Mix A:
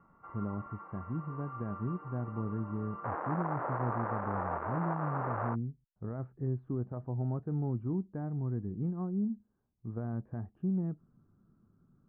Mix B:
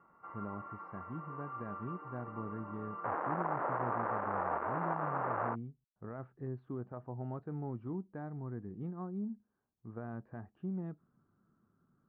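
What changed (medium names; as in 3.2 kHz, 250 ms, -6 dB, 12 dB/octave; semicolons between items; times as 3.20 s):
speech: add tilt EQ +3 dB/octave; master: remove distance through air 160 m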